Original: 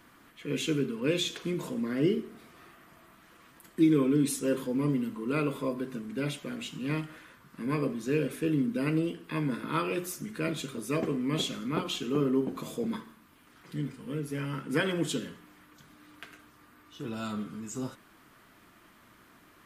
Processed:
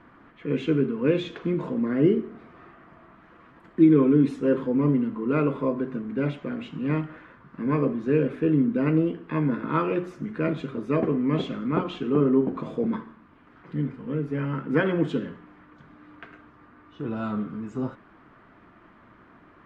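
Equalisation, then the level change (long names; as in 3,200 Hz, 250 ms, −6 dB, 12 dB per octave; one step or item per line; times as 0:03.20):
low-pass filter 1,600 Hz 12 dB per octave
+6.5 dB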